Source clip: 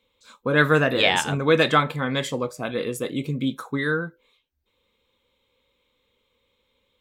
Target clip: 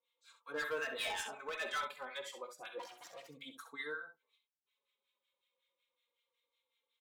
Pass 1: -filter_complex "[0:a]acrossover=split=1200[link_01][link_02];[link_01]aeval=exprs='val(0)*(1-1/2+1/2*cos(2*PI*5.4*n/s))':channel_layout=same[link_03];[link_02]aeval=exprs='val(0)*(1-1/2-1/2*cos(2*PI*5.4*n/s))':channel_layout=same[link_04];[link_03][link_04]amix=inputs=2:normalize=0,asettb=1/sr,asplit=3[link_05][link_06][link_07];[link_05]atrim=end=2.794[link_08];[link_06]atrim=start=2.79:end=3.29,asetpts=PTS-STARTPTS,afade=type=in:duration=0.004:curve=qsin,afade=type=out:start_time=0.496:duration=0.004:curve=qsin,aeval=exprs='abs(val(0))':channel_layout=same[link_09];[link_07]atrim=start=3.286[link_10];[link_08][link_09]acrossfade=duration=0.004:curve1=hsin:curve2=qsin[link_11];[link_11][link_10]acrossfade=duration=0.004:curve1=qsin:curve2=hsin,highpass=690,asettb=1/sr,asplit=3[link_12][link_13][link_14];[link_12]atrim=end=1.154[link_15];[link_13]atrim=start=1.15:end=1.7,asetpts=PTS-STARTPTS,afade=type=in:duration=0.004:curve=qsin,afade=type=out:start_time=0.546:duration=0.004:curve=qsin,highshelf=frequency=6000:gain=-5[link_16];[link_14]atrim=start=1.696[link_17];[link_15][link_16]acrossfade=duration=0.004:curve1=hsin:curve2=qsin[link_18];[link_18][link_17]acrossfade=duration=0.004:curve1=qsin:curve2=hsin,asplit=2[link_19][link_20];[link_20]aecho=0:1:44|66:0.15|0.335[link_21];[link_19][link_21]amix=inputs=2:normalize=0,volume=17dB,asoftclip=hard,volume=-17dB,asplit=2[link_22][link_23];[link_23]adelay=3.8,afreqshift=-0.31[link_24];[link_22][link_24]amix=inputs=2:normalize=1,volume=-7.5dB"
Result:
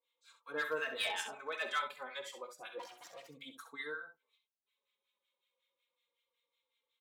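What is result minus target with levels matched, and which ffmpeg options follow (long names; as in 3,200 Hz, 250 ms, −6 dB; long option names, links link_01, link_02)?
gain into a clipping stage and back: distortion −6 dB
-filter_complex "[0:a]acrossover=split=1200[link_01][link_02];[link_01]aeval=exprs='val(0)*(1-1/2+1/2*cos(2*PI*5.4*n/s))':channel_layout=same[link_03];[link_02]aeval=exprs='val(0)*(1-1/2-1/2*cos(2*PI*5.4*n/s))':channel_layout=same[link_04];[link_03][link_04]amix=inputs=2:normalize=0,asettb=1/sr,asplit=3[link_05][link_06][link_07];[link_05]atrim=end=2.794[link_08];[link_06]atrim=start=2.79:end=3.29,asetpts=PTS-STARTPTS,afade=type=in:duration=0.004:curve=qsin,afade=type=out:start_time=0.496:duration=0.004:curve=qsin,aeval=exprs='abs(val(0))':channel_layout=same[link_09];[link_07]atrim=start=3.286[link_10];[link_08][link_09]acrossfade=duration=0.004:curve1=hsin:curve2=qsin[link_11];[link_11][link_10]acrossfade=duration=0.004:curve1=qsin:curve2=hsin,highpass=690,asettb=1/sr,asplit=3[link_12][link_13][link_14];[link_12]atrim=end=1.154[link_15];[link_13]atrim=start=1.15:end=1.7,asetpts=PTS-STARTPTS,afade=type=in:duration=0.004:curve=qsin,afade=type=out:start_time=0.546:duration=0.004:curve=qsin,highshelf=frequency=6000:gain=-5[link_16];[link_14]atrim=start=1.696[link_17];[link_15][link_16]acrossfade=duration=0.004:curve1=hsin:curve2=qsin[link_18];[link_18][link_17]acrossfade=duration=0.004:curve1=qsin:curve2=hsin,asplit=2[link_19][link_20];[link_20]aecho=0:1:44|66:0.15|0.335[link_21];[link_19][link_21]amix=inputs=2:normalize=0,volume=23dB,asoftclip=hard,volume=-23dB,asplit=2[link_22][link_23];[link_23]adelay=3.8,afreqshift=-0.31[link_24];[link_22][link_24]amix=inputs=2:normalize=1,volume=-7.5dB"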